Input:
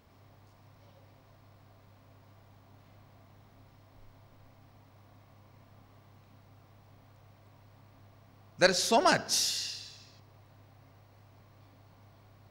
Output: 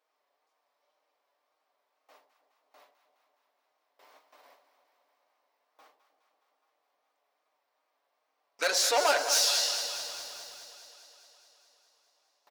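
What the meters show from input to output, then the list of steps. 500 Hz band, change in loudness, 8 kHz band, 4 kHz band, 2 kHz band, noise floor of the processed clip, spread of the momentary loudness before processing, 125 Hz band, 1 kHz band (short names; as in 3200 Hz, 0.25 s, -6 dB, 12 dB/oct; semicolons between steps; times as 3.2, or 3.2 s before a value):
-1.5 dB, +1.0 dB, +5.0 dB, +4.0 dB, 0.0 dB, -80 dBFS, 12 LU, under -30 dB, 0.0 dB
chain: gate with hold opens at -47 dBFS; in parallel at +3 dB: limiter -17 dBFS, peak gain reduction 8.5 dB; on the sum: soft clip -20 dBFS, distortion -9 dB; comb 6.7 ms, depth 54%; wow and flutter 85 cents; HPF 480 Hz 24 dB/oct; echo with dull and thin repeats by turns 0.104 s, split 840 Hz, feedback 83%, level -10 dB; lo-fi delay 0.22 s, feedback 55%, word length 7-bit, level -12 dB; gain -1.5 dB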